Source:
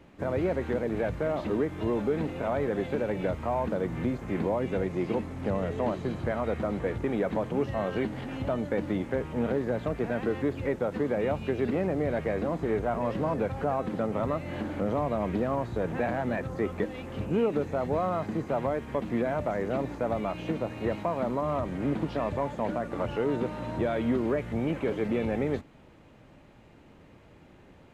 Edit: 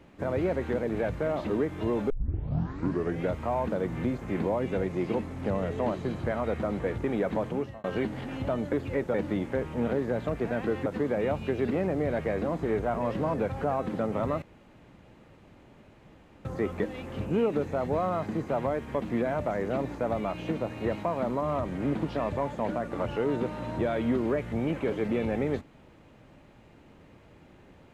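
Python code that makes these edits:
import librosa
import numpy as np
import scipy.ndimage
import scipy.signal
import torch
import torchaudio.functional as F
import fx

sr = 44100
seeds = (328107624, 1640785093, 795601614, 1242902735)

y = fx.edit(x, sr, fx.tape_start(start_s=2.1, length_s=1.21),
    fx.fade_out_span(start_s=7.49, length_s=0.35),
    fx.move(start_s=10.45, length_s=0.41, to_s=8.73),
    fx.room_tone_fill(start_s=14.42, length_s=2.03), tone=tone)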